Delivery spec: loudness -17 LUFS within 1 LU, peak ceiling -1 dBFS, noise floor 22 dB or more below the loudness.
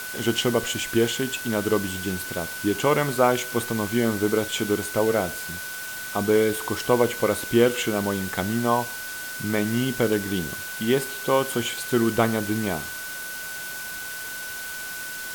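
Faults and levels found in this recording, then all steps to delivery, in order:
steady tone 1.5 kHz; tone level -34 dBFS; noise floor -34 dBFS; noise floor target -47 dBFS; loudness -24.5 LUFS; peak level -5.5 dBFS; loudness target -17.0 LUFS
-> band-stop 1.5 kHz, Q 30; noise print and reduce 13 dB; trim +7.5 dB; peak limiter -1 dBFS

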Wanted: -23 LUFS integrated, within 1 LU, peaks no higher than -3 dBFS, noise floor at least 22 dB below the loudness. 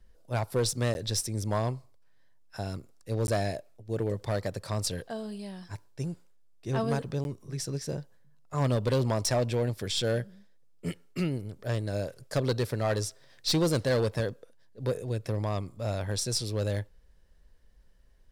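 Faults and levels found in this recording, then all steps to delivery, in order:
clipped samples 0.9%; clipping level -21.0 dBFS; dropouts 3; longest dropout 11 ms; loudness -31.0 LUFS; peak level -21.0 dBFS; loudness target -23.0 LUFS
-> clip repair -21 dBFS; interpolate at 0.94/3.27/7.24 s, 11 ms; trim +8 dB

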